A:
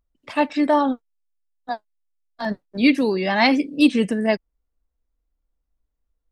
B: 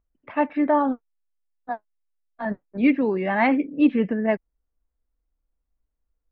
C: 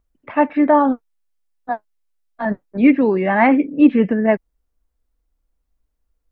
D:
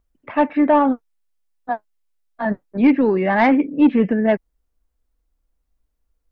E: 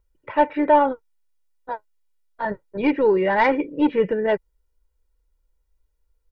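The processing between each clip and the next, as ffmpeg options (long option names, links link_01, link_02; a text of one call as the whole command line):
ffmpeg -i in.wav -af "lowpass=frequency=2200:width=0.5412,lowpass=frequency=2200:width=1.3066,volume=-2dB" out.wav
ffmpeg -i in.wav -filter_complex "[0:a]acrossover=split=2700[link_01][link_02];[link_02]acompressor=threshold=-51dB:ratio=4:attack=1:release=60[link_03];[link_01][link_03]amix=inputs=2:normalize=0,volume=6.5dB" out.wav
ffmpeg -i in.wav -af "asoftclip=type=tanh:threshold=-5.5dB" out.wav
ffmpeg -i in.wav -af "aecho=1:1:2.1:0.78,volume=-2.5dB" out.wav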